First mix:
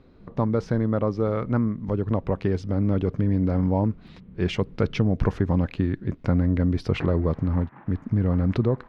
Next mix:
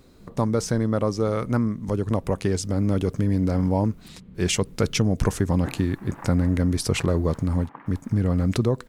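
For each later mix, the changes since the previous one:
second sound: entry -1.35 s; master: remove air absorption 310 m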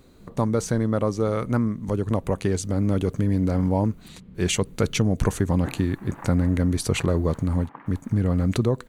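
speech: add notch 5200 Hz, Q 6.6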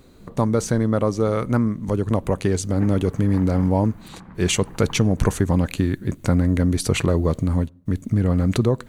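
second sound: entry -2.85 s; reverb: on

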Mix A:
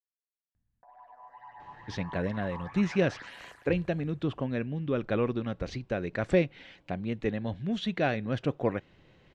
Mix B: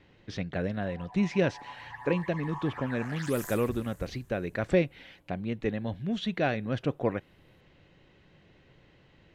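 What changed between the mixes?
speech: entry -1.60 s; background: remove tape spacing loss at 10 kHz 25 dB

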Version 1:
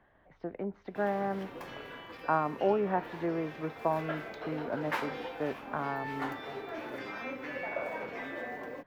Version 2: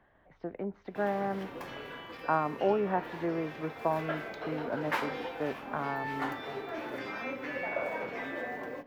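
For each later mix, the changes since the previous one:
background: send on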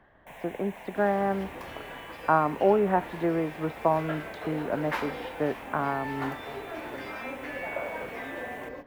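speech +6.0 dB; first sound: unmuted; second sound: remove HPF 110 Hz 24 dB/oct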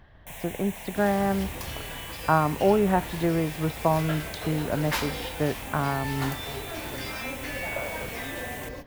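master: remove three-band isolator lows -14 dB, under 210 Hz, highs -17 dB, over 2400 Hz

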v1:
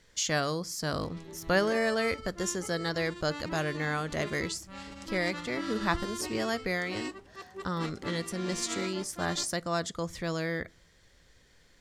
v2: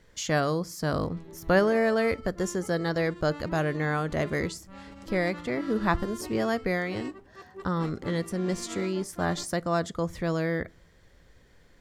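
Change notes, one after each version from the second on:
speech +5.5 dB; master: add bell 5800 Hz -10 dB 2.9 oct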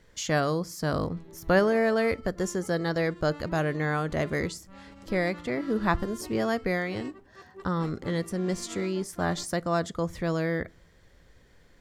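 background -3.0 dB

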